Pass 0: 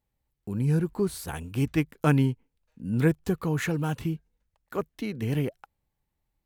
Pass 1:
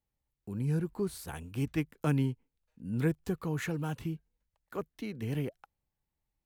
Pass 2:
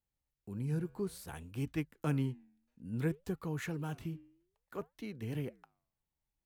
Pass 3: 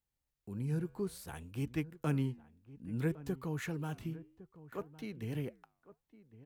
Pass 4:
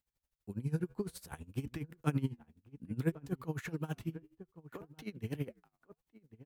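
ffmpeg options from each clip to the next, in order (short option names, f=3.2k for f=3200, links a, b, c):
-filter_complex "[0:a]acrossover=split=440|3000[a][b][c];[b]acompressor=threshold=-27dB:ratio=6[d];[a][d][c]amix=inputs=3:normalize=0,volume=-6.5dB"
-af "flanger=delay=1.8:depth=9.6:regen=-89:speed=0.59:shape=sinusoidal"
-filter_complex "[0:a]asplit=2[a][b];[b]adelay=1108,volume=-17dB,highshelf=f=4k:g=-24.9[c];[a][c]amix=inputs=2:normalize=0"
-af "aeval=exprs='val(0)*pow(10,-20*(0.5-0.5*cos(2*PI*12*n/s))/20)':c=same,volume=5dB"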